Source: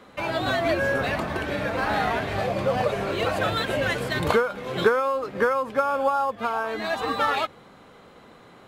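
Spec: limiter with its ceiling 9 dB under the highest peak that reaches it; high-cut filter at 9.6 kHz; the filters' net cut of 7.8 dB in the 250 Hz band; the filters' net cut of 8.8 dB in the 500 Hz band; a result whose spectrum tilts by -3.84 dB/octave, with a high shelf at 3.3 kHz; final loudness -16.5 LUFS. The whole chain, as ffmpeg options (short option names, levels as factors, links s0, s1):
-af "lowpass=9600,equalizer=f=250:t=o:g=-8,equalizer=f=500:t=o:g=-9,highshelf=f=3300:g=4,volume=4.22,alimiter=limit=0.447:level=0:latency=1"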